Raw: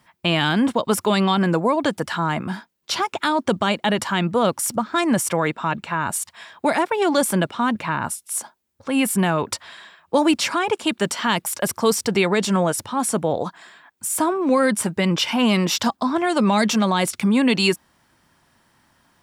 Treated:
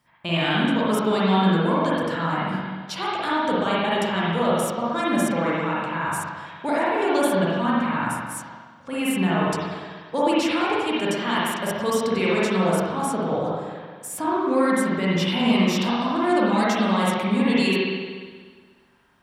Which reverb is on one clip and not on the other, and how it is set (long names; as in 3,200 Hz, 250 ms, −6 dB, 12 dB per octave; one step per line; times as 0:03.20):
spring reverb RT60 1.6 s, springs 42/59 ms, chirp 50 ms, DRR −7.5 dB
level −9.5 dB